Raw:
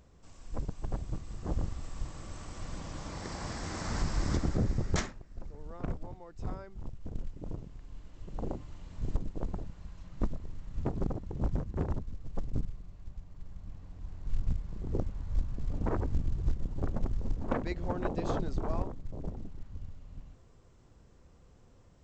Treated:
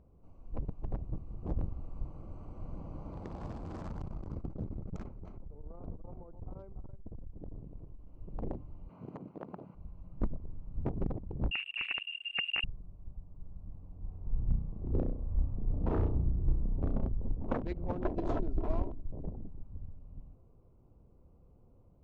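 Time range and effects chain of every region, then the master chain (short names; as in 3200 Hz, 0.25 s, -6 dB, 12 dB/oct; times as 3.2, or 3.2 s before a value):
3.57–8.07 compressor 2.5:1, threshold -33 dBFS + echo 0.292 s -8.5 dB + core saturation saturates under 120 Hz
8.89–9.75 HPF 140 Hz 24 dB/oct + bell 1600 Hz +12 dB 2.6 oct + compressor 2:1, threshold -39 dBFS
11.51–12.64 wrapped overs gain 22.5 dB + air absorption 210 m + inverted band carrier 2800 Hz
13.97–17.09 high shelf 4000 Hz -10.5 dB + flutter echo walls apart 5.6 m, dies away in 0.61 s
18.04–19.12 notch 1200 Hz, Q 16 + comb 3 ms, depth 49%
whole clip: Wiener smoothing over 25 samples; LPF 2300 Hz 6 dB/oct; gain -1.5 dB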